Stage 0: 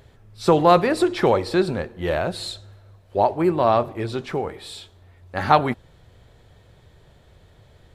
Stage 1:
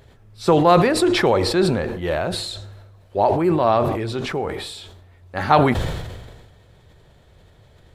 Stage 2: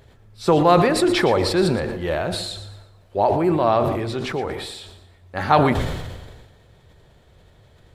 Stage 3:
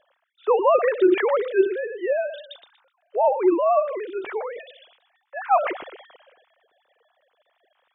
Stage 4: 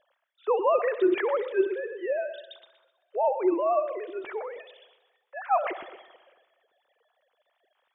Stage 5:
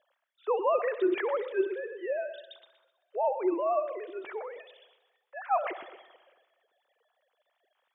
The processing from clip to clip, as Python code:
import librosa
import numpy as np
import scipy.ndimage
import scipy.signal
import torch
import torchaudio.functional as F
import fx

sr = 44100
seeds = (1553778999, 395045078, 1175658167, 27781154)

y1 = fx.sustainer(x, sr, db_per_s=39.0)
y2 = fx.echo_feedback(y1, sr, ms=118, feedback_pct=35, wet_db=-12.5)
y2 = y2 * librosa.db_to_amplitude(-1.0)
y3 = fx.sine_speech(y2, sr)
y3 = y3 * librosa.db_to_amplitude(-2.5)
y4 = fx.echo_heads(y3, sr, ms=64, heads='first and second', feedback_pct=56, wet_db=-21.0)
y4 = y4 * librosa.db_to_amplitude(-5.5)
y5 = fx.highpass(y4, sr, hz=190.0, slope=6)
y5 = y5 * librosa.db_to_amplitude(-3.0)